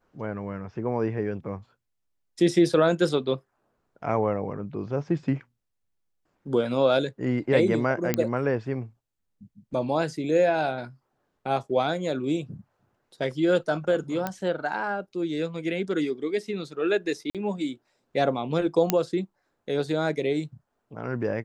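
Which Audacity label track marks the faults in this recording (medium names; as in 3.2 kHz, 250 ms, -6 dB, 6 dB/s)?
8.140000	8.140000	pop -8 dBFS
14.270000	14.270000	pop -14 dBFS
17.300000	17.350000	dropout 47 ms
18.900000	18.900000	pop -5 dBFS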